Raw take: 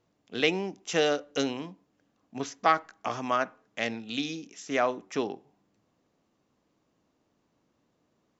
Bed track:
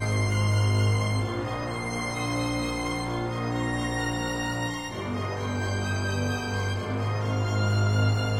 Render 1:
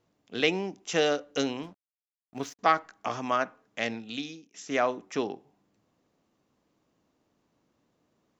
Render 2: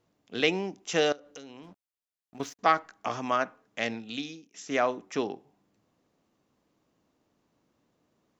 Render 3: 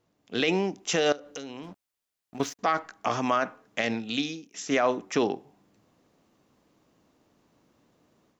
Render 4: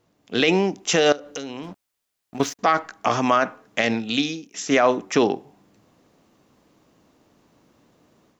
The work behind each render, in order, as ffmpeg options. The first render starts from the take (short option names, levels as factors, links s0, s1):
-filter_complex "[0:a]asettb=1/sr,asplit=3[s0][s1][s2];[s0]atrim=end=1.634[s3];[s1]atrim=start=1.63:end=2.59,asetpts=PTS-STARTPTS,afade=t=in:d=0.004:c=qsin,afade=t=out:st=0.956:d=0.004:c=qsin,aeval=exprs='sgn(val(0))*max(abs(val(0))-0.00299,0)':c=same[s4];[s2]atrim=start=2.586[s5];[s3][s4]acrossfade=d=0.004:c1=hsin:c2=qsin[s6];[s6][s5]acrossfade=d=0.004:c1=qsin:c2=hsin,asplit=2[s7][s8];[s7]atrim=end=4.54,asetpts=PTS-STARTPTS,afade=t=out:st=3.97:d=0.57:silence=0.0944061[s9];[s8]atrim=start=4.54,asetpts=PTS-STARTPTS,afade=t=in:d=0.004:c=hsin:silence=0.0944061[s10];[s9][s10]concat=n=2:v=0:a=1"
-filter_complex "[0:a]asettb=1/sr,asplit=3[s0][s1][s2];[s0]atrim=end=1.124[s3];[s1]atrim=start=1.12:end=2.4,asetpts=PTS-STARTPTS,afade=t=in:d=0.004:c=qsin,afade=t=out:st=1.276:d=0.004:c=qsin,acompressor=threshold=0.00794:ratio=8:attack=3.2:release=140:knee=1:detection=peak[s4];[s2]atrim=start=2.396[s5];[s3][s4]acrossfade=d=0.004:c1=hsin:c2=qsin[s6];[s6][s5]acrossfade=d=0.004:c1=qsin:c2=hsin"
-af "dynaudnorm=f=180:g=3:m=2.24,alimiter=limit=0.224:level=0:latency=1:release=28"
-af "volume=2.11"